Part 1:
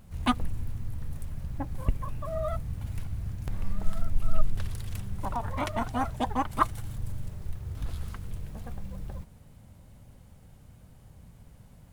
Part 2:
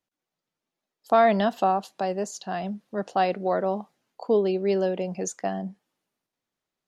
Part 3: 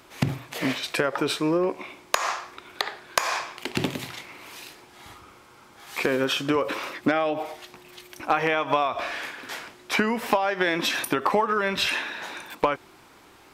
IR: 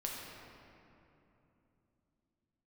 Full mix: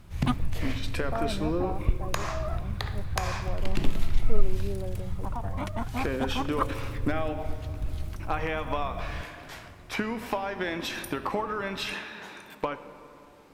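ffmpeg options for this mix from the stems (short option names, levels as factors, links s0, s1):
-filter_complex "[0:a]volume=0.562[s0];[1:a]lowpass=1300,volume=0.178[s1];[2:a]volume=0.282,asplit=2[s2][s3];[s3]volume=0.398[s4];[3:a]atrim=start_sample=2205[s5];[s4][s5]afir=irnorm=-1:irlink=0[s6];[s0][s1][s2][s6]amix=inputs=4:normalize=0,lowshelf=f=220:g=7.5"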